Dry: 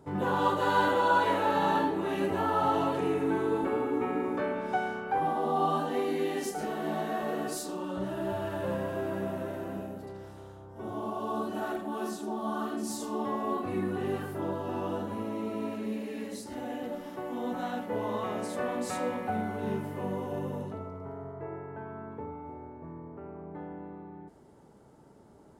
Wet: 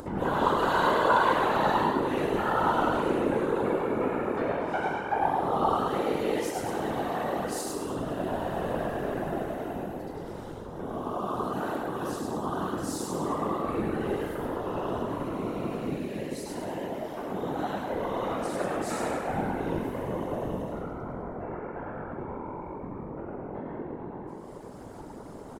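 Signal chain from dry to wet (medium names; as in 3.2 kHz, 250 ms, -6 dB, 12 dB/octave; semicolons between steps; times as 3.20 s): frequency-shifting echo 102 ms, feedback 51%, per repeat +45 Hz, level -3 dB; whisper effect; upward compressor, threshold -31 dBFS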